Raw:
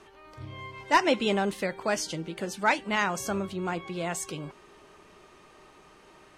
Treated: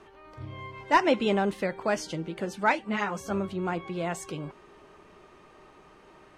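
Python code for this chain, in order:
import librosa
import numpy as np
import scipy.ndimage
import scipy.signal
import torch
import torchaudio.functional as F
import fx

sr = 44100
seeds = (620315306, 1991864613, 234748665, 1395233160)

y = fx.high_shelf(x, sr, hz=3200.0, db=-9.5)
y = fx.ensemble(y, sr, at=(2.72, 3.3), fade=0.02)
y = y * 10.0 ** (1.5 / 20.0)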